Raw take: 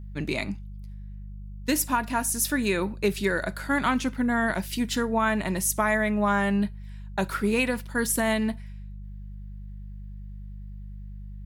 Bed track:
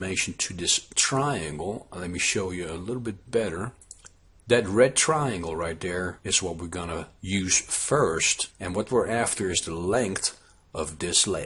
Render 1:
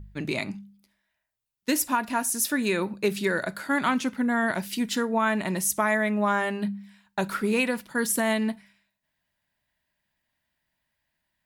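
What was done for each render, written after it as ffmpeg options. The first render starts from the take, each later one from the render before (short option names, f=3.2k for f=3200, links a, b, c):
-af "bandreject=f=50:t=h:w=4,bandreject=f=100:t=h:w=4,bandreject=f=150:t=h:w=4,bandreject=f=200:t=h:w=4"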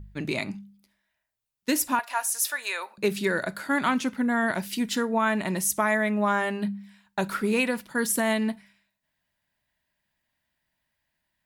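-filter_complex "[0:a]asettb=1/sr,asplit=3[a][b][c];[a]atrim=end=1.994[d];[b]atrim=start=1.99:end=2.98,asetpts=PTS-STARTPTS,afade=t=in:d=0.004:c=qsin,afade=t=out:st=0.986:d=0.004:c=qsin,highpass=f=660:w=0.5412,highpass=f=660:w=1.3066[e];[c]atrim=start=2.976[f];[d][e]acrossfade=d=0.004:c1=hsin:c2=qsin[g];[g][f]acrossfade=d=0.004:c1=qsin:c2=hsin"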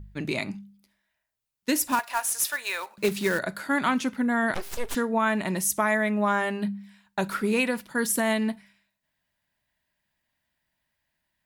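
-filter_complex "[0:a]asettb=1/sr,asplit=3[a][b][c];[a]atrim=end=1.874[d];[b]atrim=start=1.87:end=3.39,asetpts=PTS-STARTPTS,afade=t=in:d=0.004:c=qsin,afade=t=out:st=1.516:d=0.004:c=qsin,acrusher=bits=3:mode=log:mix=0:aa=0.000001[e];[c]atrim=start=3.386[f];[d][e]acrossfade=d=0.004:c1=hsin:c2=qsin[g];[g][f]acrossfade=d=0.004:c1=qsin:c2=hsin,asettb=1/sr,asplit=3[h][i][j];[h]atrim=end=4.544[k];[i]atrim=start=4.54:end=4.95,asetpts=PTS-STARTPTS,afade=t=in:d=0.004:c=qsin,afade=t=out:st=0.406:d=0.004:c=qsin,aeval=exprs='abs(val(0))':c=same[l];[j]atrim=start=4.946[m];[k][l]acrossfade=d=0.004:c1=hsin:c2=qsin[n];[n][m]acrossfade=d=0.004:c1=qsin:c2=hsin"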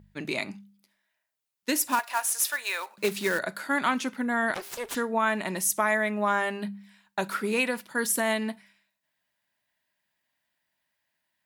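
-af "highpass=f=330:p=1"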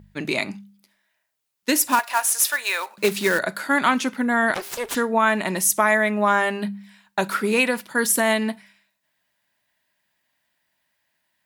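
-af "volume=6.5dB"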